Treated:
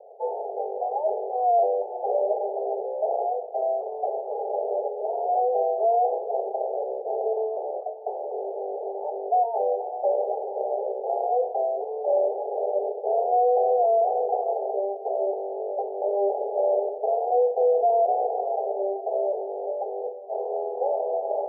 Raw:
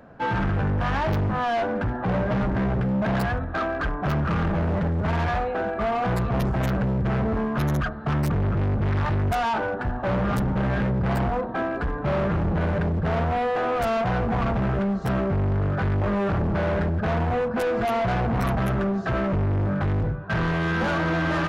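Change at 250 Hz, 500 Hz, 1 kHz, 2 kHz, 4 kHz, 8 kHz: under -20 dB, +4.5 dB, +2.0 dB, under -40 dB, under -40 dB, no reading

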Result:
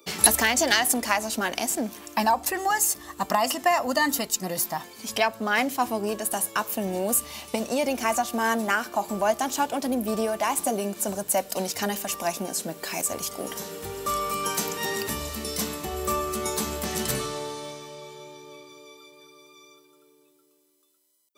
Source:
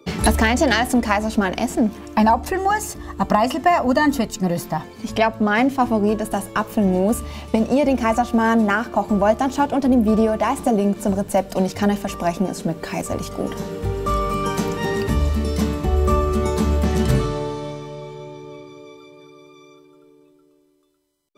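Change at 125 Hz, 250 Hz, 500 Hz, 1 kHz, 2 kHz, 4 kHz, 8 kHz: -16.5 dB, -12.0 dB, -7.5 dB, -5.5 dB, -3.0 dB, +1.0 dB, +7.0 dB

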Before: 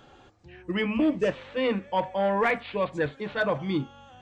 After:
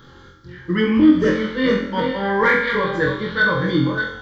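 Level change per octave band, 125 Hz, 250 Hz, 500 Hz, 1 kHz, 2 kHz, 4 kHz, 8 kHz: +11.0 dB, +11.5 dB, +6.5 dB, +6.0 dB, +12.5 dB, +9.0 dB, no reading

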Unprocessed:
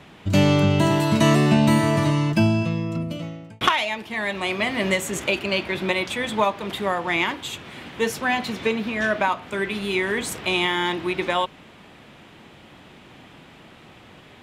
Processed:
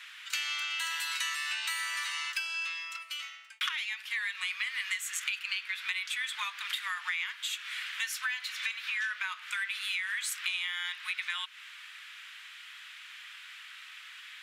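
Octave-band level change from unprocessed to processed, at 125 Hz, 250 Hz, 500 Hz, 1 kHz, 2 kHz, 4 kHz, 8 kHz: under -40 dB, under -40 dB, under -40 dB, -18.0 dB, -6.0 dB, -5.5 dB, -4.0 dB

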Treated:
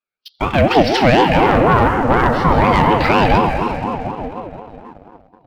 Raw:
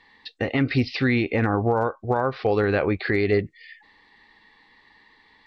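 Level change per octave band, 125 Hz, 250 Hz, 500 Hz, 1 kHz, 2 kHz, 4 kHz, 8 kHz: +8.0 dB, +8.0 dB, +8.0 dB, +16.0 dB, +8.5 dB, +12.5 dB, no reading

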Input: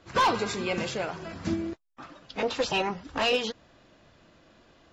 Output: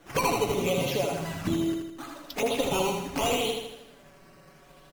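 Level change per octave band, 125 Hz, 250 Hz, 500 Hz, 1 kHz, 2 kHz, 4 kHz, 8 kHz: +5.5 dB, +3.0 dB, +2.5 dB, -1.5 dB, -2.5 dB, -0.5 dB, +7.0 dB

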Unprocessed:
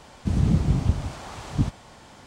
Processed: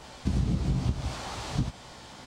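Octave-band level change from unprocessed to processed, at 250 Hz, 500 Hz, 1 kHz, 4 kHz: -5.5 dB, -3.5 dB, -1.0 dB, +2.5 dB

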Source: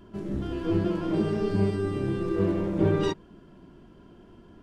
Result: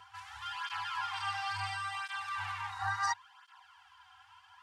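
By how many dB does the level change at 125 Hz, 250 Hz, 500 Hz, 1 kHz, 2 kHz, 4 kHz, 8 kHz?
-21.5 dB, under -40 dB, under -40 dB, +4.5 dB, +6.0 dB, +3.0 dB, no reading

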